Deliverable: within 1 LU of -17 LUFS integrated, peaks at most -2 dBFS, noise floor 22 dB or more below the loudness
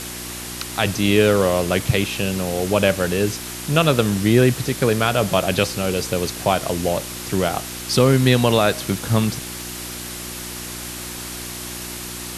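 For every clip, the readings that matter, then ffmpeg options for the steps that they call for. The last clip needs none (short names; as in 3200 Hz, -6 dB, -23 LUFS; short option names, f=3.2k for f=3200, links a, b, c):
hum 60 Hz; harmonics up to 360 Hz; hum level -37 dBFS; noise floor -32 dBFS; noise floor target -43 dBFS; loudness -20.5 LUFS; peak -2.5 dBFS; loudness target -17.0 LUFS
-> -af "bandreject=f=60:t=h:w=4,bandreject=f=120:t=h:w=4,bandreject=f=180:t=h:w=4,bandreject=f=240:t=h:w=4,bandreject=f=300:t=h:w=4,bandreject=f=360:t=h:w=4"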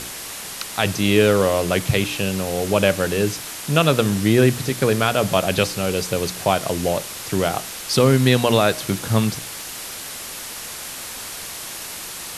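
hum none; noise floor -33 dBFS; noise floor target -43 dBFS
-> -af "afftdn=nr=10:nf=-33"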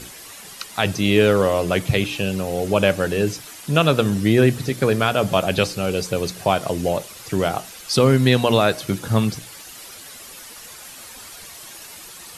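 noise floor -40 dBFS; noise floor target -42 dBFS
-> -af "afftdn=nr=6:nf=-40"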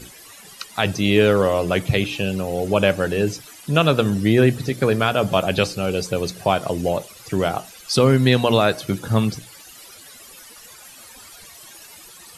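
noise floor -44 dBFS; loudness -20.0 LUFS; peak -3.0 dBFS; loudness target -17.0 LUFS
-> -af "volume=3dB,alimiter=limit=-2dB:level=0:latency=1"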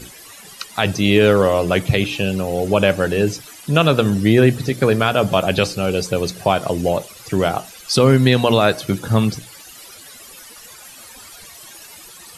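loudness -17.5 LUFS; peak -2.0 dBFS; noise floor -41 dBFS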